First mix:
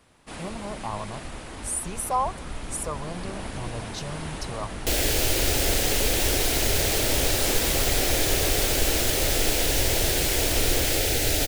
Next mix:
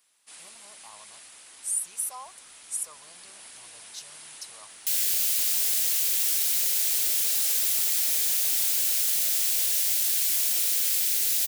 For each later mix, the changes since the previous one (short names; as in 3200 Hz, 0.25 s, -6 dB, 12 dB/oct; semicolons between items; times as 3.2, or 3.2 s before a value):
master: add differentiator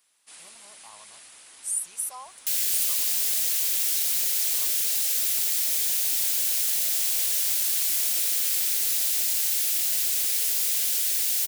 second sound: entry -2.40 s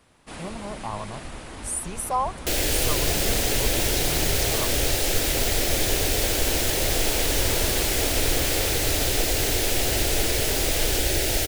master: remove differentiator